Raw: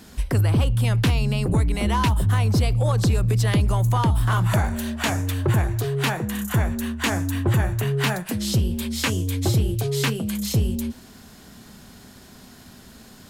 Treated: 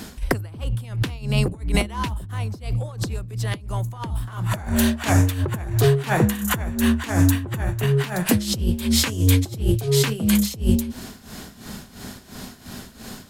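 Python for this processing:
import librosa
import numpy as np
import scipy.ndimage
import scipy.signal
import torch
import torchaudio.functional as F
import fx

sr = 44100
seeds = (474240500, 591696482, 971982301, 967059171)

y = fx.over_compress(x, sr, threshold_db=-24.0, ratio=-0.5)
y = y * (1.0 - 0.8 / 2.0 + 0.8 / 2.0 * np.cos(2.0 * np.pi * 2.9 * (np.arange(len(y)) / sr)))
y = y * librosa.db_to_amplitude(7.0)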